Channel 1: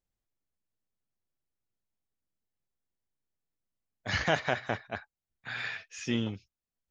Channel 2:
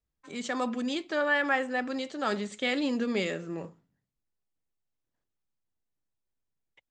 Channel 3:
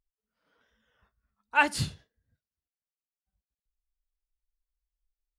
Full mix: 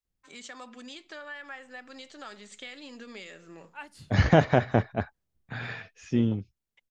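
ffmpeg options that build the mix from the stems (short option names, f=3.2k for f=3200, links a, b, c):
-filter_complex "[0:a]dynaudnorm=f=210:g=13:m=15dB,tiltshelf=f=810:g=9,adelay=50,volume=-4dB[a];[1:a]tiltshelf=f=800:g=-6,acompressor=threshold=-36dB:ratio=3,volume=-6.5dB[b];[2:a]adelay=2200,volume=-20dB[c];[a][b][c]amix=inputs=3:normalize=0"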